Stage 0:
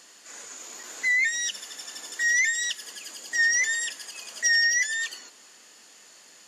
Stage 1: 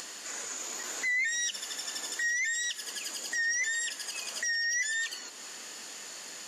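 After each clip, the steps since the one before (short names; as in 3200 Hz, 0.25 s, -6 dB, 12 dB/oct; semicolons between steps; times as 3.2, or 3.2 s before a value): in parallel at +2 dB: upward compressor, threshold -28 dBFS; on the sum: limiter -17 dBFS, peak gain reduction 11 dB; gain -7 dB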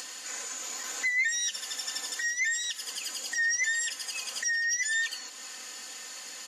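low shelf 460 Hz -8.5 dB; comb 3.9 ms, depth 68%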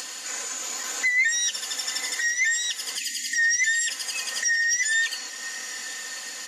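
diffused feedback echo 0.99 s, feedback 42%, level -14.5 dB; spectral gain 2.98–3.88, 320–1700 Hz -29 dB; gain +5.5 dB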